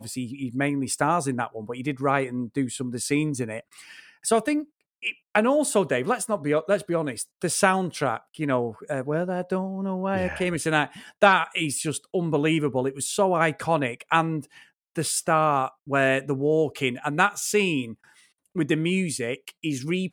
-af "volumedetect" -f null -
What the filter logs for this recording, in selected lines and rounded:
mean_volume: -25.3 dB
max_volume: -4.7 dB